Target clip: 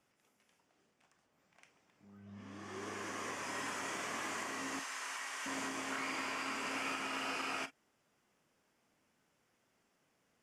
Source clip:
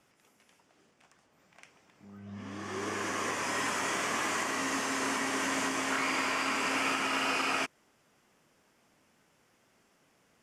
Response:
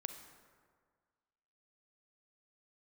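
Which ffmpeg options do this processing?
-filter_complex "[0:a]asettb=1/sr,asplit=3[link_01][link_02][link_03];[link_01]atrim=end=4.794[link_04];[link_02]atrim=start=4.79:end=5.46,asetpts=PTS-STARTPTS,afade=type=in:duration=0.004:curve=qsin,afade=type=out:start_time=0.666:duration=0.004:curve=qsin,highpass=960[link_05];[link_03]atrim=start=5.456[link_06];[link_04][link_05]acrossfade=duration=0.004:curve1=hsin:curve2=qsin[link_07];[link_07][link_06]acrossfade=duration=0.004:curve1=qsin:curve2=hsin[link_08];[1:a]atrim=start_sample=2205,atrim=end_sample=3087,asetrate=61740,aresample=44100[link_09];[link_08][link_09]afir=irnorm=-1:irlink=0,volume=-3dB"

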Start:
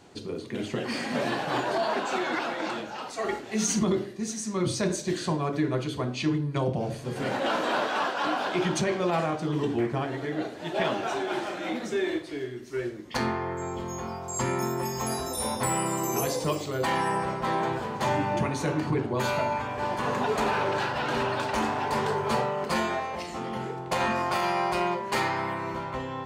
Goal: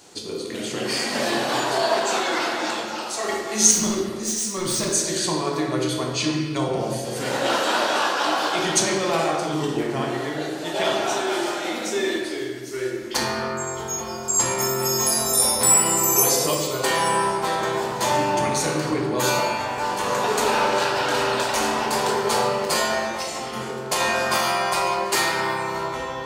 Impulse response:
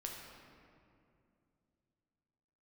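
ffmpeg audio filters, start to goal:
-filter_complex "[0:a]bass=frequency=250:gain=-8,treble=frequency=4000:gain=13,asettb=1/sr,asplit=3[link_01][link_02][link_03];[link_01]atrim=end=3.714[link_04];[link_02]atrim=start=3.71:end=4.86,asetpts=PTS-STARTPTS,afade=type=in:duration=0.004:curve=qsin,afade=type=out:start_time=1.146:duration=0.004:curve=qsin,volume=26dB,asoftclip=hard,volume=-26dB[link_05];[link_03]atrim=start=4.856[link_06];[link_04][link_05]acrossfade=duration=0.004:curve1=hsin:curve2=qsin[link_07];[link_07][link_06]acrossfade=duration=0.004:curve1=qsin:curve2=hsin[link_08];[1:a]atrim=start_sample=2205,afade=type=out:start_time=0.41:duration=0.01,atrim=end_sample=18522[link_09];[link_08][link_09]afir=irnorm=-1:irlink=0,volume=7dB"

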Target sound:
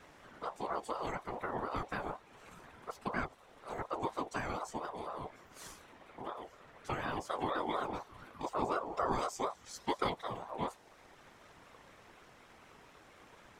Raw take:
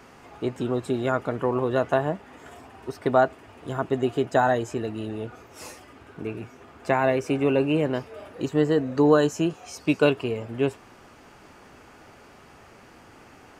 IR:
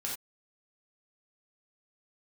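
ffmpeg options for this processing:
-filter_complex "[0:a]acrossover=split=240|3000[link_01][link_02][link_03];[link_02]acompressor=threshold=-49dB:ratio=1.5[link_04];[link_01][link_04][link_03]amix=inputs=3:normalize=0,afftfilt=real='hypot(re,im)*cos(2*PI*random(0))':imag='hypot(re,im)*sin(2*PI*random(1))':win_size=512:overlap=0.75,aeval=exprs='val(0)*sin(2*PI*740*n/s+740*0.25/4.1*sin(2*PI*4.1*n/s))':channel_layout=same,volume=1dB"

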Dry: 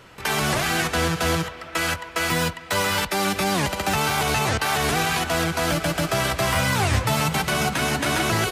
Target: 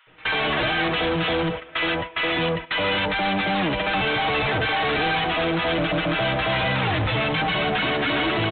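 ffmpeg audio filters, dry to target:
ffmpeg -i in.wav -filter_complex "[0:a]equalizer=frequency=150:width=6.1:gain=-14.5,aecho=1:1:6.4:0.73,acrossover=split=990[link_01][link_02];[link_01]adelay=70[link_03];[link_03][link_02]amix=inputs=2:normalize=0,agate=range=-12dB:threshold=-32dB:ratio=16:detection=peak,aresample=8000,asoftclip=type=tanh:threshold=-25.5dB,aresample=44100,volume=6dB" out.wav

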